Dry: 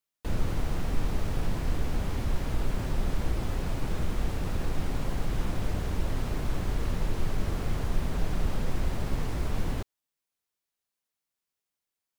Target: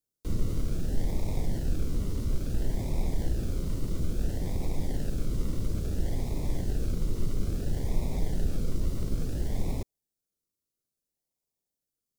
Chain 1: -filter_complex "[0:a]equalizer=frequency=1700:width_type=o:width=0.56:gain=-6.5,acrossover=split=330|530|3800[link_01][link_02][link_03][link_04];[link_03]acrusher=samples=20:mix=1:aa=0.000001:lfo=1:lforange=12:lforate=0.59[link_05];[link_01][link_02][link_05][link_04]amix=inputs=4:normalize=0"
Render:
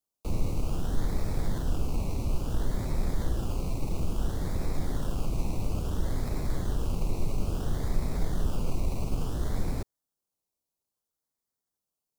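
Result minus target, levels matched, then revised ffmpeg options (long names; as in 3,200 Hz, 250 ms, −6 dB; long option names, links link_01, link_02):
sample-and-hold swept by an LFO: distortion −26 dB
-filter_complex "[0:a]equalizer=frequency=1700:width_type=o:width=0.56:gain=-6.5,acrossover=split=330|530|3800[link_01][link_02][link_03][link_04];[link_03]acrusher=samples=41:mix=1:aa=0.000001:lfo=1:lforange=24.6:lforate=0.59[link_05];[link_01][link_02][link_05][link_04]amix=inputs=4:normalize=0"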